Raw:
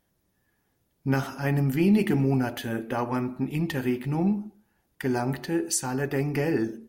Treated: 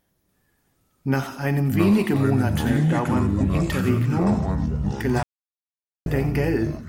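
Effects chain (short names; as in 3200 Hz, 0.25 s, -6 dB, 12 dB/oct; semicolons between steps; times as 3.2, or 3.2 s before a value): 2.7–3.67 high shelf 7800 Hz -11.5 dB; thin delay 88 ms, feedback 36%, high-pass 2500 Hz, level -9 dB; echoes that change speed 0.29 s, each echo -5 st, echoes 3; 5.23–6.06 mute; gain +2.5 dB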